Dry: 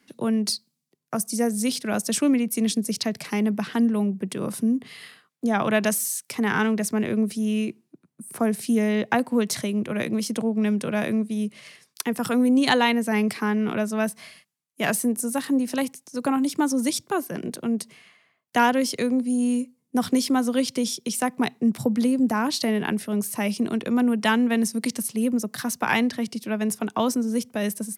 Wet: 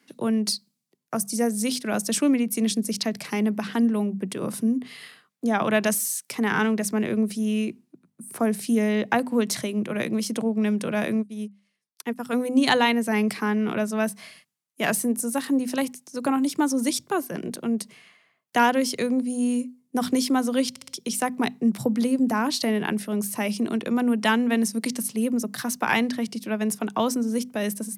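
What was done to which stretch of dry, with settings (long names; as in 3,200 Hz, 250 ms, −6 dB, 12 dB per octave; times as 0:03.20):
0:11.14–0:12.33: expander for the loud parts 2.5 to 1, over −40 dBFS
0:20.70: stutter in place 0.06 s, 4 plays
whole clip: high-pass filter 97 Hz; mains-hum notches 50/100/150/200/250 Hz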